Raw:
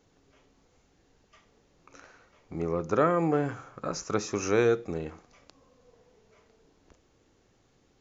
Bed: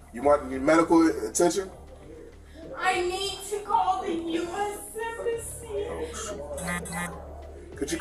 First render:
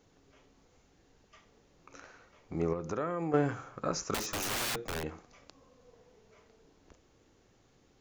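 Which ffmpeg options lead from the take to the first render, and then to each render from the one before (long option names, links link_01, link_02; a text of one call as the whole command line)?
ffmpeg -i in.wav -filter_complex "[0:a]asettb=1/sr,asplit=3[link_01][link_02][link_03];[link_01]atrim=end=2.734[link_04];[link_02]atrim=start=2.73:end=3.34,asetpts=PTS-STARTPTS,afade=type=in:duration=0.004:curve=qsin,afade=type=out:start_time=0.606:duration=0.004:curve=qsin,acompressor=threshold=-35dB:ratio=2.5:attack=3.2:release=140:knee=1:detection=peak[link_05];[link_03]atrim=start=3.336[link_06];[link_04][link_05]acrossfade=duration=0.004:curve1=hsin:curve2=qsin[link_07];[link_07][link_06]acrossfade=duration=0.004:curve1=qsin:curve2=hsin,asettb=1/sr,asplit=3[link_08][link_09][link_10];[link_08]atrim=end=4.144[link_11];[link_09]atrim=start=4.14:end=5.04,asetpts=PTS-STARTPTS,afade=type=in:duration=0.004:curve=qsin,afade=type=out:start_time=0.896:duration=0.004:curve=qsin,aeval=exprs='(mod(28.2*val(0)+1,2)-1)/28.2':channel_layout=same[link_12];[link_10]atrim=start=5.036[link_13];[link_11][link_12]acrossfade=duration=0.004:curve1=hsin:curve2=qsin[link_14];[link_14][link_13]acrossfade=duration=0.004:curve1=qsin:curve2=hsin" out.wav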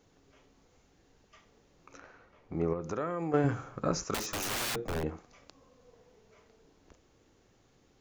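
ffmpeg -i in.wav -filter_complex "[0:a]asettb=1/sr,asplit=3[link_01][link_02][link_03];[link_01]atrim=end=1.974[link_04];[link_02]atrim=start=1.97:end=2.82,asetpts=PTS-STARTPTS,afade=type=in:duration=0.004:curve=qsin,afade=type=out:start_time=0.846:duration=0.004:curve=qsin,aemphasis=mode=reproduction:type=75fm[link_05];[link_03]atrim=start=2.816[link_06];[link_04][link_05]acrossfade=duration=0.004:curve1=hsin:curve2=qsin[link_07];[link_07][link_06]acrossfade=duration=0.004:curve1=qsin:curve2=hsin,asettb=1/sr,asplit=3[link_08][link_09][link_10];[link_08]atrim=end=3.444[link_11];[link_09]atrim=start=3.44:end=4.05,asetpts=PTS-STARTPTS,afade=type=in:duration=0.004:curve=qsin,afade=type=out:start_time=0.606:duration=0.004:curve=qsin,lowshelf=frequency=390:gain=7[link_12];[link_10]atrim=start=4.046[link_13];[link_11][link_12]acrossfade=duration=0.004:curve1=hsin:curve2=qsin[link_14];[link_14][link_13]acrossfade=duration=0.004:curve1=qsin:curve2=hsin,asettb=1/sr,asplit=3[link_15][link_16][link_17];[link_15]atrim=end=4.764[link_18];[link_16]atrim=start=4.76:end=5.17,asetpts=PTS-STARTPTS,afade=type=in:duration=0.004:curve=qsin,afade=type=out:start_time=0.406:duration=0.004:curve=qsin,tiltshelf=frequency=1200:gain=5.5[link_19];[link_17]atrim=start=5.166[link_20];[link_18][link_19]acrossfade=duration=0.004:curve1=hsin:curve2=qsin[link_21];[link_21][link_20]acrossfade=duration=0.004:curve1=qsin:curve2=hsin" out.wav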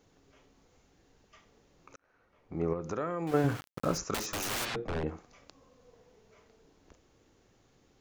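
ffmpeg -i in.wav -filter_complex "[0:a]asettb=1/sr,asplit=3[link_01][link_02][link_03];[link_01]atrim=end=3.274[link_04];[link_02]atrim=start=3.27:end=3.98,asetpts=PTS-STARTPTS,afade=type=in:duration=0.004:curve=qsin,afade=type=out:start_time=0.706:duration=0.004:curve=qsin,aeval=exprs='val(0)*gte(abs(val(0)),0.0119)':channel_layout=same[link_05];[link_03]atrim=start=3.976[link_06];[link_04][link_05]acrossfade=duration=0.004:curve1=hsin:curve2=qsin[link_07];[link_07][link_06]acrossfade=duration=0.004:curve1=qsin:curve2=hsin,asplit=3[link_08][link_09][link_10];[link_08]afade=type=out:start_time=4.64:duration=0.02[link_11];[link_09]lowpass=4100,afade=type=in:start_time=4.64:duration=0.02,afade=type=out:start_time=5.06:duration=0.02[link_12];[link_10]afade=type=in:start_time=5.06:duration=0.02[link_13];[link_11][link_12][link_13]amix=inputs=3:normalize=0,asplit=2[link_14][link_15];[link_14]atrim=end=1.96,asetpts=PTS-STARTPTS,afade=type=out:start_time=1.956:duration=0.004:curve=hsin[link_16];[link_15]atrim=start=1.96,asetpts=PTS-STARTPTS,afade=type=in:duration=0.75[link_17];[link_16][link_17]concat=n=2:v=0:a=1" out.wav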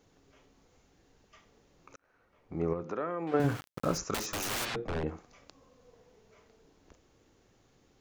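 ffmpeg -i in.wav -filter_complex "[0:a]asettb=1/sr,asplit=3[link_01][link_02][link_03];[link_01]atrim=end=2.834[link_04];[link_02]atrim=start=2.83:end=3.4,asetpts=PTS-STARTPTS,afade=type=in:duration=0.004:curve=qsin,afade=type=out:start_time=0.566:duration=0.004:curve=qsin,highpass=210,lowpass=3300[link_05];[link_03]atrim=start=3.396[link_06];[link_04][link_05]acrossfade=duration=0.004:curve1=hsin:curve2=qsin[link_07];[link_07][link_06]acrossfade=duration=0.004:curve1=qsin:curve2=hsin" out.wav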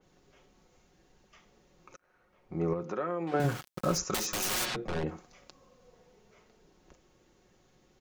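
ffmpeg -i in.wav -af "aecho=1:1:5.5:0.44,adynamicequalizer=threshold=0.00398:dfrequency=3300:dqfactor=0.7:tfrequency=3300:tqfactor=0.7:attack=5:release=100:ratio=0.375:range=2:mode=boostabove:tftype=highshelf" out.wav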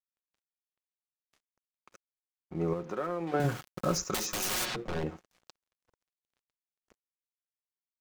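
ffmpeg -i in.wav -af "aeval=exprs='sgn(val(0))*max(abs(val(0))-0.00224,0)':channel_layout=same" out.wav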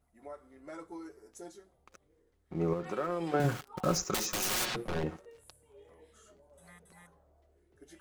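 ffmpeg -i in.wav -i bed.wav -filter_complex "[1:a]volume=-25.5dB[link_01];[0:a][link_01]amix=inputs=2:normalize=0" out.wav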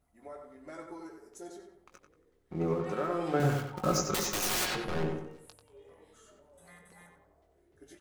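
ffmpeg -i in.wav -filter_complex "[0:a]asplit=2[link_01][link_02];[link_02]adelay=20,volume=-8.5dB[link_03];[link_01][link_03]amix=inputs=2:normalize=0,asplit=2[link_04][link_05];[link_05]adelay=92,lowpass=frequency=2800:poles=1,volume=-4.5dB,asplit=2[link_06][link_07];[link_07]adelay=92,lowpass=frequency=2800:poles=1,volume=0.42,asplit=2[link_08][link_09];[link_09]adelay=92,lowpass=frequency=2800:poles=1,volume=0.42,asplit=2[link_10][link_11];[link_11]adelay=92,lowpass=frequency=2800:poles=1,volume=0.42,asplit=2[link_12][link_13];[link_13]adelay=92,lowpass=frequency=2800:poles=1,volume=0.42[link_14];[link_04][link_06][link_08][link_10][link_12][link_14]amix=inputs=6:normalize=0" out.wav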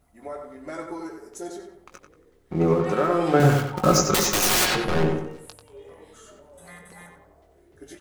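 ffmpeg -i in.wav -af "volume=10.5dB" out.wav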